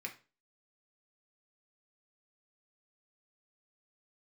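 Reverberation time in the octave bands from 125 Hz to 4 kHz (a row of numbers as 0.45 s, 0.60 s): 0.35 s, 0.35 s, 0.35 s, 0.30 s, 0.30 s, 0.30 s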